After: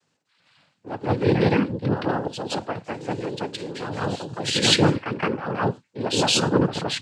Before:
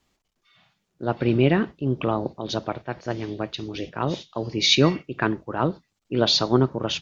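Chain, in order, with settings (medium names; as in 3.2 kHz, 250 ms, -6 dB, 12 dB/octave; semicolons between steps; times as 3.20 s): reverse echo 168 ms -6 dB; noise-vocoded speech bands 8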